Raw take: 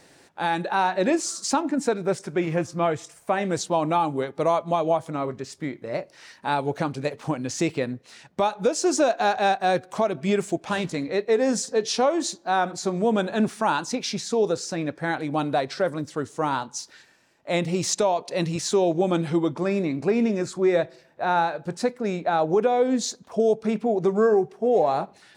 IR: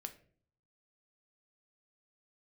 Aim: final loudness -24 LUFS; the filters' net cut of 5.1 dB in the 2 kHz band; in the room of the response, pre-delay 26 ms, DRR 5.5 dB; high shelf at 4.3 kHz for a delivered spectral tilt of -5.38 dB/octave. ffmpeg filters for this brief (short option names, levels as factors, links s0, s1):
-filter_complex "[0:a]equalizer=f=2000:t=o:g=-6.5,highshelf=f=4300:g=-4,asplit=2[s0][s1];[1:a]atrim=start_sample=2205,adelay=26[s2];[s1][s2]afir=irnorm=-1:irlink=0,volume=0.794[s3];[s0][s3]amix=inputs=2:normalize=0"